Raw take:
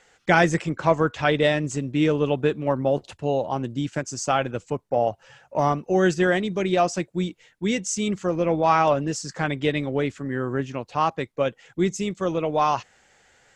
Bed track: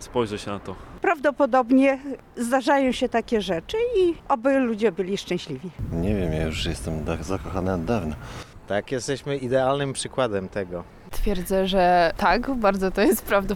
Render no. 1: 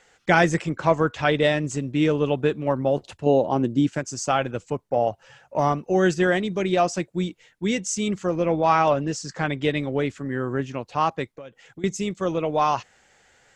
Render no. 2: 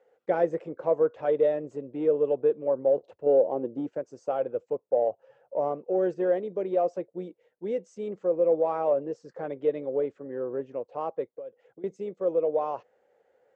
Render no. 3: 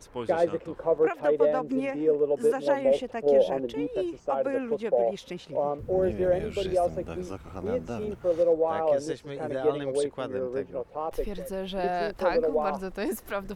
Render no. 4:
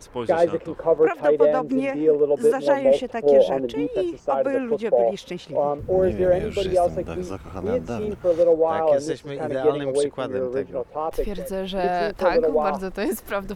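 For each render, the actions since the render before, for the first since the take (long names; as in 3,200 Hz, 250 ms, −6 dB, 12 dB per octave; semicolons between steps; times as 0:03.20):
0:03.26–0:03.92: parametric band 310 Hz +8 dB 1.8 octaves; 0:08.48–0:09.60: low-pass filter 7,900 Hz; 0:11.34–0:11.84: downward compressor 8 to 1, threshold −36 dBFS
in parallel at −5 dB: soft clipping −20.5 dBFS, distortion −9 dB; on the sum: resonant band-pass 500 Hz, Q 4.2
mix in bed track −11.5 dB
level +5.5 dB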